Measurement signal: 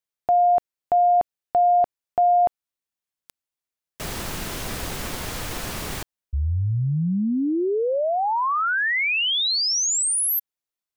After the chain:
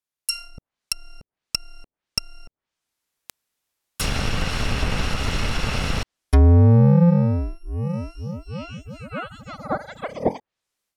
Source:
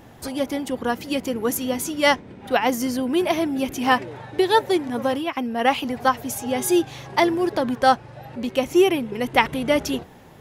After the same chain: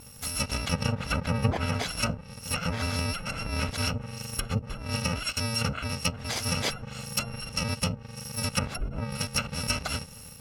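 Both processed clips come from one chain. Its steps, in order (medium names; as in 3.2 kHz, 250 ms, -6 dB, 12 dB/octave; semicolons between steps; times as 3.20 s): bit-reversed sample order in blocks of 128 samples; level rider gain up to 12 dB; low-pass that closes with the level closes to 410 Hz, closed at -7.5 dBFS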